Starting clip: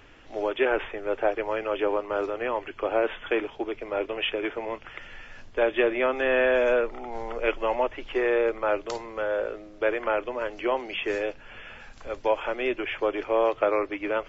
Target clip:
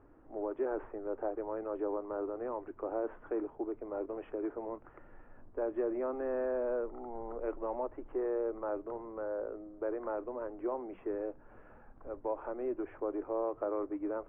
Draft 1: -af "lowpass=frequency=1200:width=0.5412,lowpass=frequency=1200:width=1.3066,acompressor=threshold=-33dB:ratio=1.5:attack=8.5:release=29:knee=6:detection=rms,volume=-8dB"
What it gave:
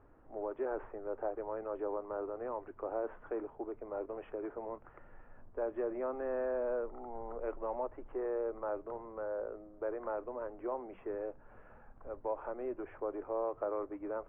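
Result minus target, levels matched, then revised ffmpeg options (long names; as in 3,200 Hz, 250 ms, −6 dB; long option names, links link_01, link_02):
250 Hz band −3.5 dB
-af "lowpass=frequency=1200:width=0.5412,lowpass=frequency=1200:width=1.3066,acompressor=threshold=-33dB:ratio=1.5:attack=8.5:release=29:knee=6:detection=rms,equalizer=frequency=310:width=2.2:gain=6.5,volume=-8dB"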